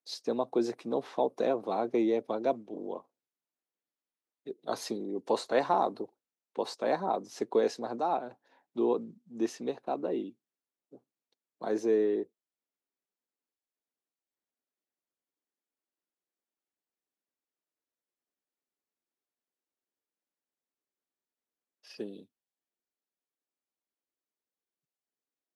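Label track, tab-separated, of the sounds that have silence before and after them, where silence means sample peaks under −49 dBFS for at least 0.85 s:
4.460000	12.250000	sound
21.850000	22.230000	sound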